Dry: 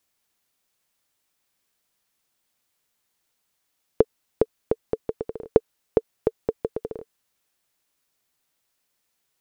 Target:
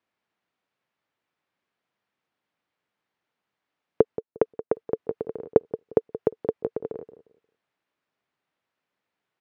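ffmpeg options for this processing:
-filter_complex "[0:a]asplit=3[a][b][c];[a]afade=t=out:st=4.01:d=0.02[d];[b]agate=range=-33dB:threshold=-33dB:ratio=3:detection=peak,afade=t=in:st=4.01:d=0.02,afade=t=out:st=4.86:d=0.02[e];[c]afade=t=in:st=4.86:d=0.02[f];[d][e][f]amix=inputs=3:normalize=0,highpass=110,lowpass=2.3k,asplit=2[g][h];[h]adelay=177,lowpass=f=990:p=1,volume=-13dB,asplit=2[i][j];[j]adelay=177,lowpass=f=990:p=1,volume=0.24,asplit=2[k][l];[l]adelay=177,lowpass=f=990:p=1,volume=0.24[m];[g][i][k][m]amix=inputs=4:normalize=0"

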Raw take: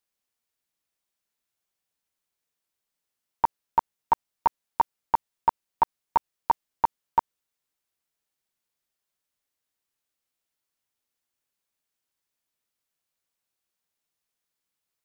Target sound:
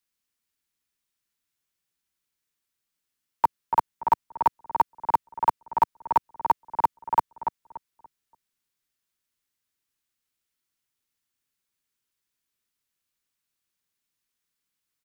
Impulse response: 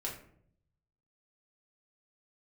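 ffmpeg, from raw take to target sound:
-filter_complex "[0:a]acrossover=split=150|470|890[a][b][c][d];[c]acrusher=bits=6:mix=0:aa=0.000001[e];[a][b][e][d]amix=inputs=4:normalize=0,asplit=2[f][g];[g]adelay=288,lowpass=f=1.8k:p=1,volume=-6.5dB,asplit=2[h][i];[i]adelay=288,lowpass=f=1.8k:p=1,volume=0.29,asplit=2[j][k];[k]adelay=288,lowpass=f=1.8k:p=1,volume=0.29,asplit=2[l][m];[m]adelay=288,lowpass=f=1.8k:p=1,volume=0.29[n];[f][h][j][l][n]amix=inputs=5:normalize=0,volume=1.5dB"

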